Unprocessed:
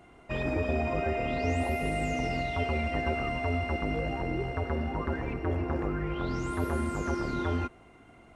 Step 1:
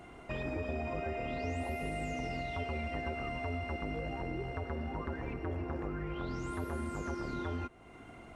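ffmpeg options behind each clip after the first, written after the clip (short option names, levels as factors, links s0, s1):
-af "acompressor=threshold=0.00447:ratio=2,volume=1.5"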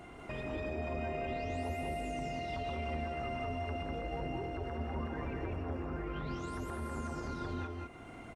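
-filter_complex "[0:a]alimiter=level_in=2.82:limit=0.0631:level=0:latency=1:release=68,volume=0.355,asplit=2[s0][s1];[s1]aecho=0:1:171|197:0.398|0.708[s2];[s0][s2]amix=inputs=2:normalize=0,volume=1.12"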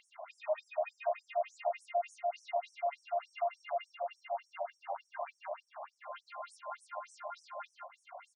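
-af "highpass=f=570:t=q:w=4.9,afftfilt=real='re*between(b*sr/1024,770*pow(7700/770,0.5+0.5*sin(2*PI*3.4*pts/sr))/1.41,770*pow(7700/770,0.5+0.5*sin(2*PI*3.4*pts/sr))*1.41)':imag='im*between(b*sr/1024,770*pow(7700/770,0.5+0.5*sin(2*PI*3.4*pts/sr))/1.41,770*pow(7700/770,0.5+0.5*sin(2*PI*3.4*pts/sr))*1.41)':win_size=1024:overlap=0.75,volume=1.26"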